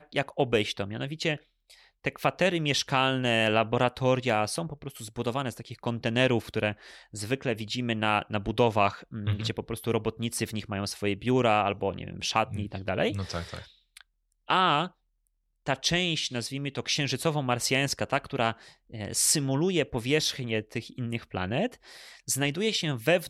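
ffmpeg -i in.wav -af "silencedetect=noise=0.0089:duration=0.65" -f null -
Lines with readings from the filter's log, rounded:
silence_start: 14.88
silence_end: 15.66 | silence_duration: 0.78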